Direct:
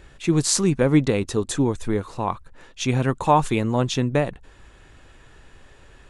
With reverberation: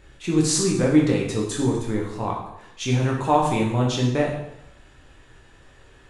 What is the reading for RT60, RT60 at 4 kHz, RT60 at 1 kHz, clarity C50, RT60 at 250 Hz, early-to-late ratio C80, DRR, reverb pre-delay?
0.80 s, 0.75 s, 0.80 s, 4.0 dB, 0.85 s, 7.0 dB, −2.0 dB, 8 ms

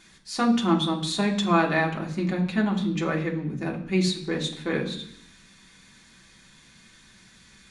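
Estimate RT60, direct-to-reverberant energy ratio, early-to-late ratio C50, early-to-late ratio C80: 0.65 s, −1.0 dB, 10.0 dB, 13.5 dB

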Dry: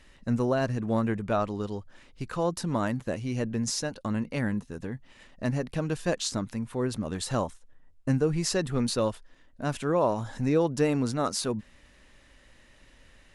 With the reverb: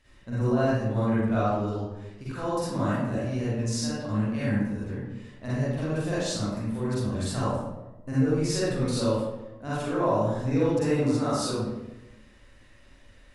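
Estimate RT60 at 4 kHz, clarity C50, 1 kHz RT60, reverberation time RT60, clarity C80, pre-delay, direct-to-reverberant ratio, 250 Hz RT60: 0.60 s, −5.0 dB, 0.95 s, 1.0 s, 0.0 dB, 39 ms, −10.0 dB, 1.2 s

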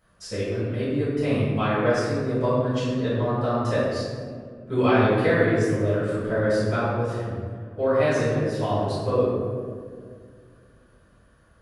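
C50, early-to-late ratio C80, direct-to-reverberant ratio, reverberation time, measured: −2.0 dB, 0.5 dB, −11.5 dB, 2.0 s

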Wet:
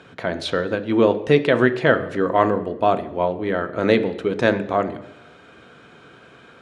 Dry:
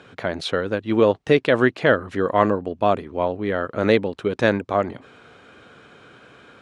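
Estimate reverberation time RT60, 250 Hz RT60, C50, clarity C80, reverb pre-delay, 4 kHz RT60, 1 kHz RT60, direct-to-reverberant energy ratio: 0.90 s, 0.85 s, 14.0 dB, 16.5 dB, 3 ms, 0.90 s, 0.90 s, 8.5 dB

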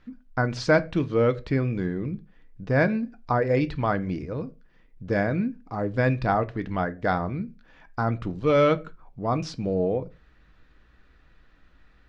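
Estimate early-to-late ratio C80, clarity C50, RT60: 27.0 dB, 21.5 dB, non-exponential decay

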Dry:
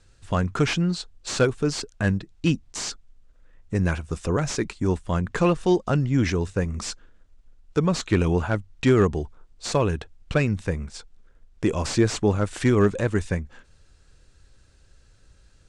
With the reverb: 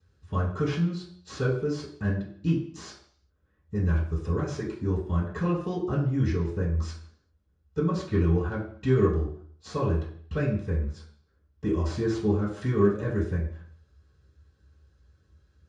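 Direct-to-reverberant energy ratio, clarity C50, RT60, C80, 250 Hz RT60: −13.0 dB, 6.0 dB, 0.55 s, 9.0 dB, 0.60 s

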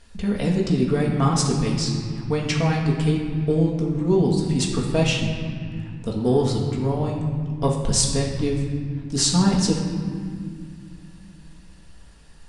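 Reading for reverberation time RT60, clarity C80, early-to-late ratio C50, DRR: 2.1 s, 5.0 dB, 3.0 dB, −2.5 dB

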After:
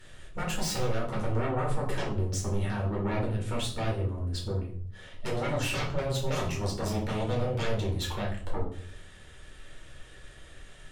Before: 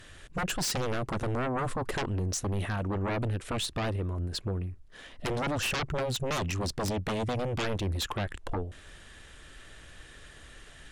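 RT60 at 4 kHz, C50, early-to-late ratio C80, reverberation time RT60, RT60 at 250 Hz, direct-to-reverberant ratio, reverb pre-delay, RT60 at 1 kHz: 0.40 s, 6.5 dB, 11.5 dB, 0.60 s, 0.75 s, −4.0 dB, 5 ms, 0.50 s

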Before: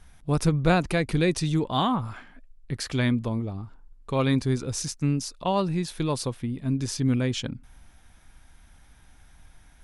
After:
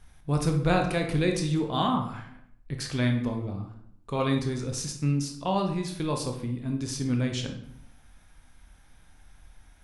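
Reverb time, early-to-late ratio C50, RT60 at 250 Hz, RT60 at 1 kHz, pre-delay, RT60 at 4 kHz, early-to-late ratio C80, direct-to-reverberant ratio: 0.70 s, 7.0 dB, 0.85 s, 0.65 s, 18 ms, 0.50 s, 11.0 dB, 3.0 dB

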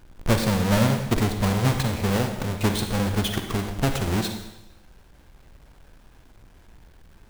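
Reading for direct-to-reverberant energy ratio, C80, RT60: 5.5 dB, 8.5 dB, 1.0 s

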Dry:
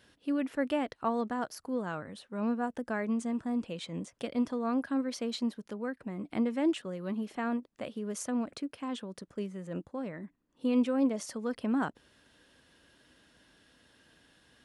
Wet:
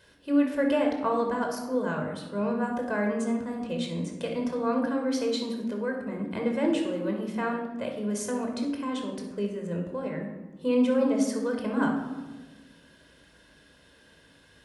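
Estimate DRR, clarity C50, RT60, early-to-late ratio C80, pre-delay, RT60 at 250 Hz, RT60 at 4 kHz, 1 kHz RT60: 1.5 dB, 4.5 dB, 1.2 s, 7.5 dB, 20 ms, 1.7 s, 0.65 s, 1.1 s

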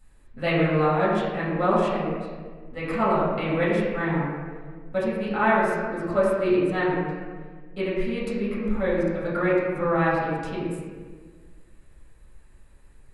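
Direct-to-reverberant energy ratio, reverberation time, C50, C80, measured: −9.5 dB, 1.6 s, −0.5 dB, 1.0 dB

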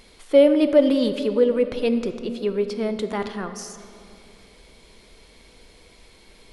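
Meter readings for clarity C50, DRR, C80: 10.0 dB, 9.0 dB, 11.0 dB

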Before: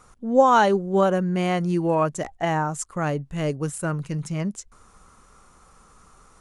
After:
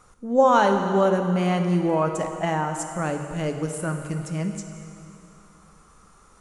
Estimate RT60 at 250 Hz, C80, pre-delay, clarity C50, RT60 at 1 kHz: 2.9 s, 7.0 dB, 5 ms, 6.0 dB, 2.8 s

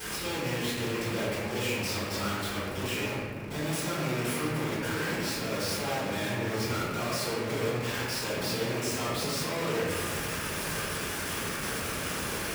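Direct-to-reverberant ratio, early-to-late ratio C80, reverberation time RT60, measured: −13.5 dB, 0.0 dB, 1.5 s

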